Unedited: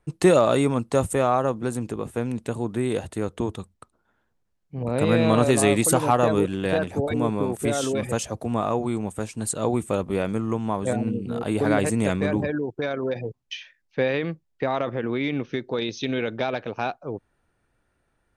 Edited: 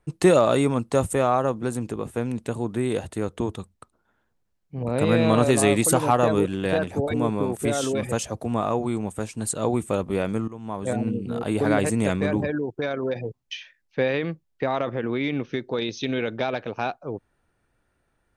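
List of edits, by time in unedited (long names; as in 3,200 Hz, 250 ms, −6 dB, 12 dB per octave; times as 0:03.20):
0:10.48–0:11.00: fade in, from −18.5 dB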